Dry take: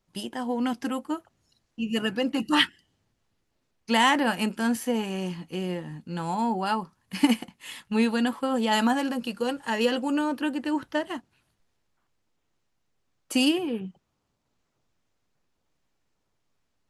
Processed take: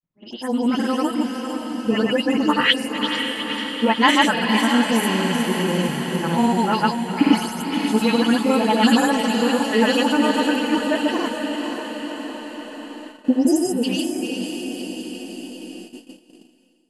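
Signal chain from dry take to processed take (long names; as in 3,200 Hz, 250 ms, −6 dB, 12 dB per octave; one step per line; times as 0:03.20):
every frequency bin delayed by itself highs late, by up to 217 ms
delay with a high-pass on its return 384 ms, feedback 54%, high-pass 2,500 Hz, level −7 dB
granular cloud, pitch spread up and down by 0 semitones
time-frequency box erased 0:12.95–0:13.83, 940–4,900 Hz
feedback delay with all-pass diffusion 529 ms, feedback 64%, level −6.5 dB
automatic gain control gain up to 9 dB
noise gate −37 dBFS, range −15 dB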